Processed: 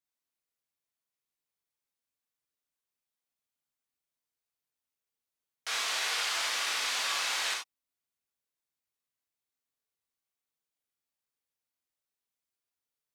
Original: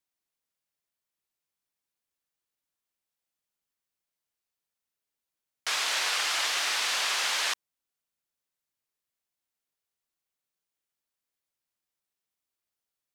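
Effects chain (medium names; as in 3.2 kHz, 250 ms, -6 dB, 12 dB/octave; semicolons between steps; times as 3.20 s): gated-style reverb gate 110 ms flat, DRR -1.5 dB; trim -7 dB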